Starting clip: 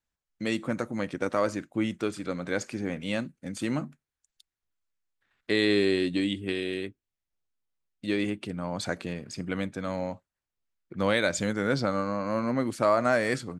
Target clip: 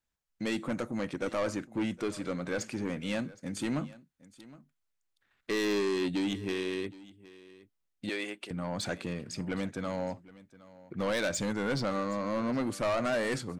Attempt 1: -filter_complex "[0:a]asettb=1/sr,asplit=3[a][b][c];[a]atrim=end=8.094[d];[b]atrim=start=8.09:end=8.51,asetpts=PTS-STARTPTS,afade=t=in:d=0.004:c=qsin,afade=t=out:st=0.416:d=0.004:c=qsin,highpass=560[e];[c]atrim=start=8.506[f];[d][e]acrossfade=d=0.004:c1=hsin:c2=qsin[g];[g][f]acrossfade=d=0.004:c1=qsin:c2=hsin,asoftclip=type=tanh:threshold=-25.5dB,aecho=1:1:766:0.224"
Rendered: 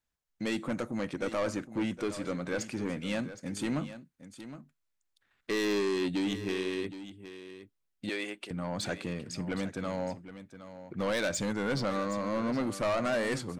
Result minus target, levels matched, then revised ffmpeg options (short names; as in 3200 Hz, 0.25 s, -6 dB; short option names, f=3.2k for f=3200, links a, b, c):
echo-to-direct +7 dB
-filter_complex "[0:a]asettb=1/sr,asplit=3[a][b][c];[a]atrim=end=8.094[d];[b]atrim=start=8.09:end=8.51,asetpts=PTS-STARTPTS,afade=t=in:d=0.004:c=qsin,afade=t=out:st=0.416:d=0.004:c=qsin,highpass=560[e];[c]atrim=start=8.506[f];[d][e]acrossfade=d=0.004:c1=hsin:c2=qsin[g];[g][f]acrossfade=d=0.004:c1=qsin:c2=hsin,asoftclip=type=tanh:threshold=-25.5dB,aecho=1:1:766:0.1"